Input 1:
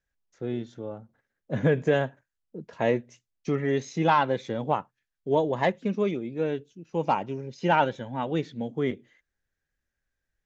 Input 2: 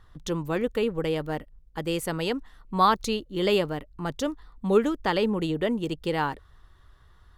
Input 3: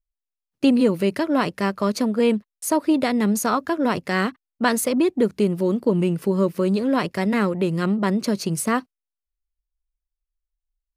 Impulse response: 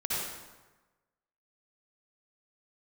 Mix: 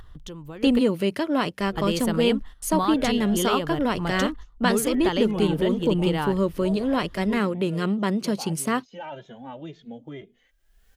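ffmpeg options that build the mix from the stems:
-filter_complex "[0:a]equalizer=f=660:t=o:w=0.35:g=7,alimiter=limit=-17dB:level=0:latency=1,asplit=2[a][b];[b]adelay=2.4,afreqshift=2[c];[a][c]amix=inputs=2:normalize=1,adelay=1300,volume=-9dB[d];[1:a]lowshelf=f=150:g=8,acompressor=threshold=-25dB:ratio=6,volume=2dB,asplit=3[e][f][g];[e]atrim=end=0.79,asetpts=PTS-STARTPTS,afade=t=out:st=0.786:d=0.004:c=hsin[h];[f]atrim=start=0.79:end=1.6,asetpts=PTS-STARTPTS,volume=0[i];[g]atrim=start=1.6,asetpts=PTS-STARTPTS,afade=t=in:d=0.004:c=hsin[j];[h][i][j]concat=n=3:v=0:a=1[k];[2:a]volume=-3dB,asplit=2[l][m];[m]apad=whole_len=325181[n];[k][n]sidechaingate=range=-13dB:threshold=-44dB:ratio=16:detection=peak[o];[d][o][l]amix=inputs=3:normalize=0,equalizer=f=3.1k:t=o:w=0.28:g=6.5,acompressor=mode=upward:threshold=-33dB:ratio=2.5"

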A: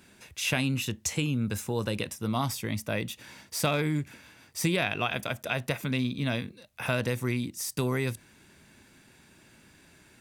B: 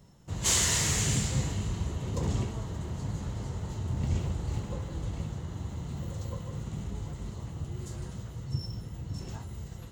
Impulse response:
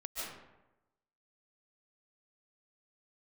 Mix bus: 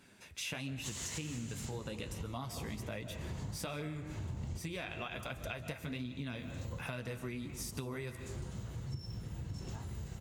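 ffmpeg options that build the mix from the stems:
-filter_complex "[0:a]highshelf=f=11k:g=-5,flanger=delay=6.9:depth=6.4:regen=-33:speed=1.3:shape=sinusoidal,volume=-2dB,asplit=3[a][b][c];[b]volume=-11dB[d];[1:a]adelay=400,volume=-1dB[e];[c]apad=whole_len=455081[f];[e][f]sidechaincompress=threshold=-43dB:ratio=4:attack=5.4:release=310[g];[2:a]atrim=start_sample=2205[h];[d][h]afir=irnorm=-1:irlink=0[i];[a][g][i]amix=inputs=3:normalize=0,acompressor=threshold=-38dB:ratio=6"

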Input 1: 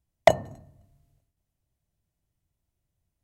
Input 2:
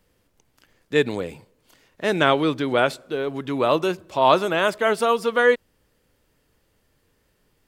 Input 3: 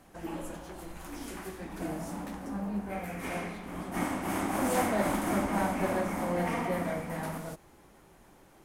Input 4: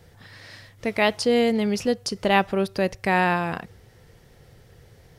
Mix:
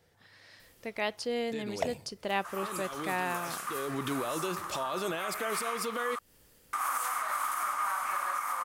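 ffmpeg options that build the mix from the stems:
-filter_complex "[0:a]adelay=1550,volume=-16dB[a];[1:a]acompressor=threshold=-24dB:ratio=4,alimiter=level_in=2.5dB:limit=-24dB:level=0:latency=1:release=25,volume=-2.5dB,adelay=600,volume=1dB[b];[2:a]highpass=f=1.2k:t=q:w=10,adelay=2300,volume=-2dB,asplit=3[c][d][e];[c]atrim=end=6.19,asetpts=PTS-STARTPTS,afade=t=out:st=6.186:d=0.004:c=hsin[f];[d]atrim=start=6.19:end=6.73,asetpts=PTS-STARTPTS,volume=0[g];[e]atrim=start=6.73,asetpts=PTS-STARTPTS,afade=t=in:d=0.004:c=hsin[h];[f][g][h]concat=n=3:v=0:a=1[i];[3:a]lowshelf=f=170:g=-11.5,volume=-11dB,asplit=2[j][k];[k]apad=whole_len=364746[l];[b][l]sidechaincompress=threshold=-37dB:ratio=8:attack=5.2:release=753[m];[m][i]amix=inputs=2:normalize=0,highshelf=f=5k:g=12,alimiter=limit=-22.5dB:level=0:latency=1:release=212,volume=0dB[n];[a][j][n]amix=inputs=3:normalize=0"

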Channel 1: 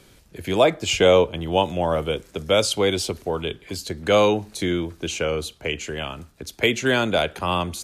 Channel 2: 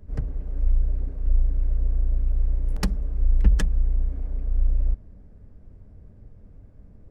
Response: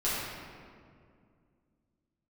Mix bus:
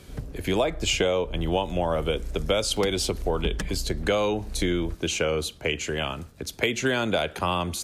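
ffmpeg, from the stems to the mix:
-filter_complex "[0:a]volume=1.5dB[a];[1:a]highpass=f=130:p=1,volume=0dB[b];[a][b]amix=inputs=2:normalize=0,acompressor=threshold=-20dB:ratio=10"

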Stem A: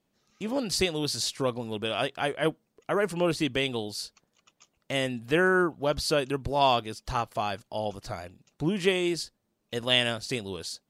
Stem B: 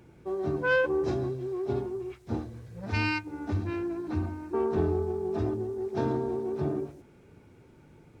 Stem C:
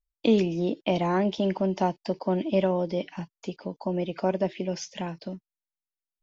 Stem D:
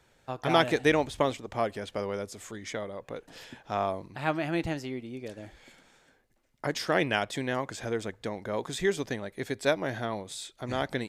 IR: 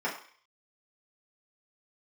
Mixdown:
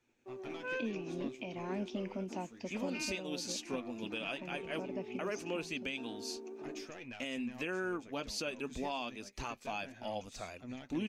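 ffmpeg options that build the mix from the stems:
-filter_complex "[0:a]flanger=delay=1.1:depth=4.9:regen=-57:speed=0.26:shape=sinusoidal,equalizer=f=120:t=o:w=0.83:g=-9,adelay=2300,volume=-5dB[a];[1:a]agate=range=-33dB:threshold=-47dB:ratio=3:detection=peak,highpass=f=260:w=0.5412,highpass=f=260:w=1.3066,volume=-15.5dB[b];[2:a]adelay=550,volume=-16dB[c];[3:a]acompressor=threshold=-27dB:ratio=6,aeval=exprs='(tanh(14.1*val(0)+0.35)-tanh(0.35))/14.1':c=same,flanger=delay=8.1:depth=7.9:regen=36:speed=0.28:shape=sinusoidal,volume=-13dB[d];[a][b][c][d]amix=inputs=4:normalize=0,equalizer=f=250:t=o:w=0.33:g=11,equalizer=f=2.5k:t=o:w=0.33:g=12,equalizer=f=6.3k:t=o:w=0.33:g=8,equalizer=f=10k:t=o:w=0.33:g=-5,alimiter=level_in=3.5dB:limit=-24dB:level=0:latency=1:release=343,volume=-3.5dB"

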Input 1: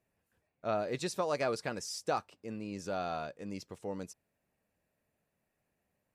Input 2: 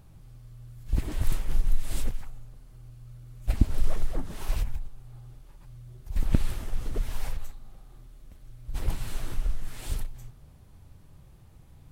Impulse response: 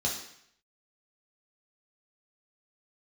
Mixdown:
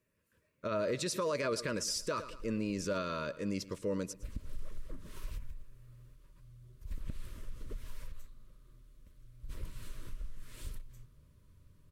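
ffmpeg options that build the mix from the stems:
-filter_complex "[0:a]volume=1.5dB,asplit=3[a][b][c];[b]volume=-19.5dB[d];[1:a]acompressor=threshold=-29dB:ratio=2,adelay=750,volume=-14.5dB[e];[c]apad=whole_len=558623[f];[e][f]sidechaincompress=threshold=-55dB:ratio=8:attack=16:release=190[g];[d]aecho=0:1:111|222|333|444|555|666:1|0.4|0.16|0.064|0.0256|0.0102[h];[a][g][h]amix=inputs=3:normalize=0,dynaudnorm=f=110:g=7:m=5dB,asuperstop=centerf=770:order=12:qfactor=2.7,alimiter=level_in=2dB:limit=-24dB:level=0:latency=1:release=45,volume=-2dB"

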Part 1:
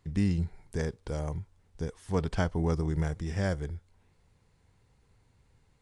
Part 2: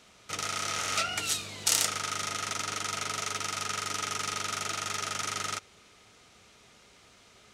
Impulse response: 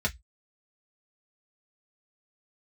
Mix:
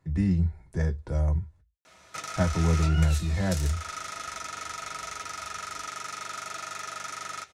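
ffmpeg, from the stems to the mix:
-filter_complex "[0:a]volume=-3.5dB,asplit=3[a][b][c];[a]atrim=end=1.61,asetpts=PTS-STARTPTS,afade=t=out:st=1.606:d=0.004:c=hsin[d];[b]atrim=start=1.61:end=2.36,asetpts=PTS-STARTPTS,volume=0[e];[c]atrim=start=2.36,asetpts=PTS-STARTPTS,afade=t=in:d=0.004:c=hsin[f];[d][e][f]concat=n=3:v=0:a=1,asplit=2[g][h];[h]volume=-7dB[i];[1:a]lowshelf=f=390:g=-10,acompressor=threshold=-37dB:ratio=6,adelay=1850,volume=2dB,asplit=2[j][k];[k]volume=-9dB[l];[2:a]atrim=start_sample=2205[m];[i][l]amix=inputs=2:normalize=0[n];[n][m]afir=irnorm=-1:irlink=0[o];[g][j][o]amix=inputs=3:normalize=0"

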